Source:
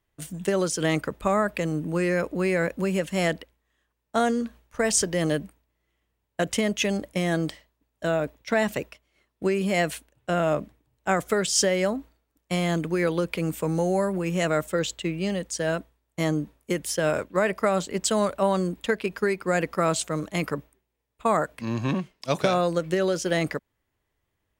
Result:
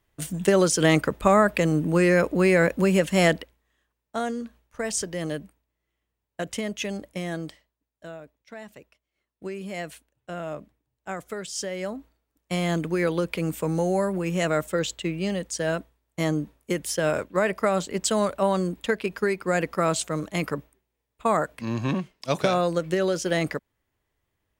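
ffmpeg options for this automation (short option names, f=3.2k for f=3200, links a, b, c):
-af "volume=23dB,afade=t=out:st=3.26:d=0.91:silence=0.298538,afade=t=out:st=7.18:d=1.07:silence=0.237137,afade=t=in:st=8.79:d=0.71:silence=0.398107,afade=t=in:st=11.64:d=1.08:silence=0.316228"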